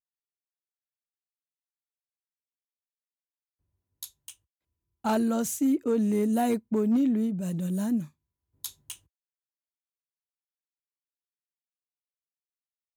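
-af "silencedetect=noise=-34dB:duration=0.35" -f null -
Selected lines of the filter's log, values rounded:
silence_start: 0.00
silence_end: 4.03 | silence_duration: 4.03
silence_start: 4.30
silence_end: 5.05 | silence_duration: 0.74
silence_start: 8.04
silence_end: 8.64 | silence_duration: 0.61
silence_start: 8.93
silence_end: 12.97 | silence_duration: 4.04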